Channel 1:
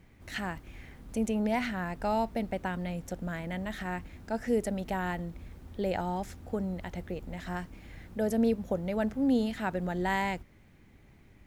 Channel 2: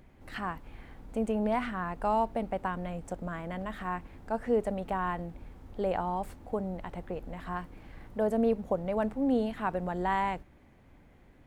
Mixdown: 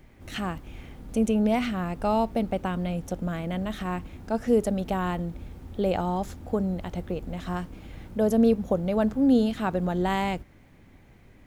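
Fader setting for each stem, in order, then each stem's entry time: +2.5, 0.0 dB; 0.00, 0.00 s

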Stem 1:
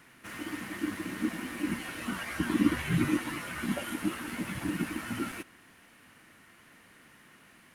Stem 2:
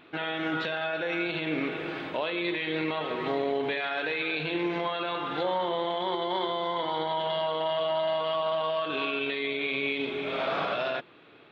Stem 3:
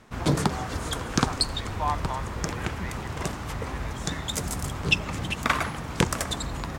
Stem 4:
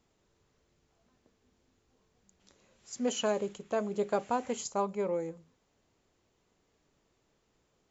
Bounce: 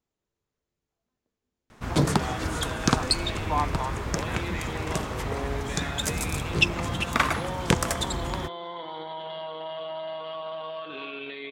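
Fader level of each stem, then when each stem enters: off, -7.0 dB, +1.0 dB, -13.5 dB; off, 2.00 s, 1.70 s, 0.00 s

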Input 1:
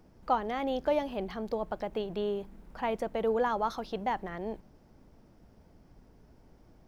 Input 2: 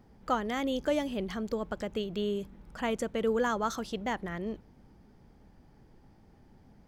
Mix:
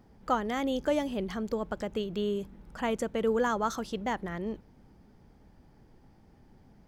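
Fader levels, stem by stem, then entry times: -14.0, 0.0 dB; 0.00, 0.00 s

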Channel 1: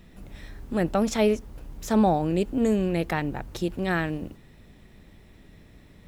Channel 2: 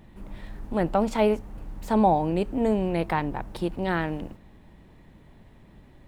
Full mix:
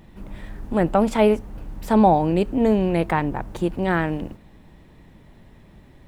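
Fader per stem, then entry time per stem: -6.0, +2.5 dB; 0.00, 0.00 s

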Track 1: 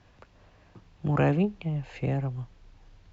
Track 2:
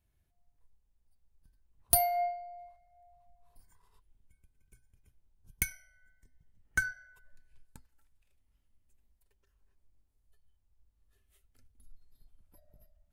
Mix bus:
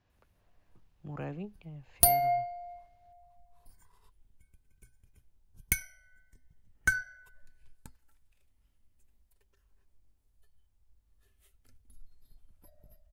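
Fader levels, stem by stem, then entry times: -16.0, +3.0 dB; 0.00, 0.10 s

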